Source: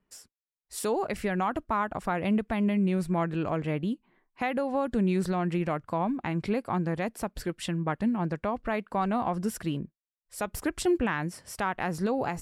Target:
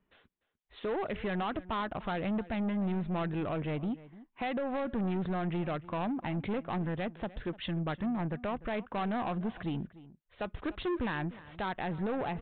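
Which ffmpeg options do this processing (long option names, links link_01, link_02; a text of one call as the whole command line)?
ffmpeg -i in.wav -filter_complex "[0:a]aresample=8000,asoftclip=type=tanh:threshold=-29dB,aresample=44100,asplit=2[link_01][link_02];[link_02]adelay=297.4,volume=-18dB,highshelf=frequency=4000:gain=-6.69[link_03];[link_01][link_03]amix=inputs=2:normalize=0" out.wav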